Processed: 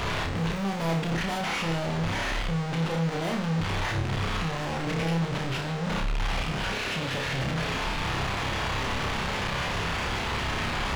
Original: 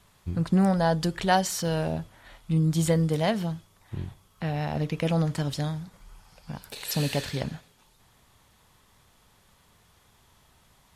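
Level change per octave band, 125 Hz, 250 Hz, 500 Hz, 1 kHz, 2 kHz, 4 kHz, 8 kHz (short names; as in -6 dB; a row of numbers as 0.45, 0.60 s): -1.0, -2.5, -2.0, +2.0, +8.5, +6.0, -2.5 dB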